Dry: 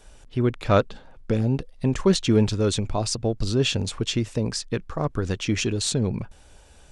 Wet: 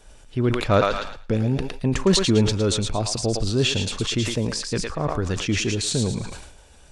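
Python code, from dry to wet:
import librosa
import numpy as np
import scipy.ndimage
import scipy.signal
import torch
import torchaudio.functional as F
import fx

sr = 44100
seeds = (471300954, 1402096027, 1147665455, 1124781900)

p1 = x + fx.echo_thinned(x, sr, ms=111, feedback_pct=39, hz=1000.0, wet_db=-5.0, dry=0)
y = fx.sustainer(p1, sr, db_per_s=57.0)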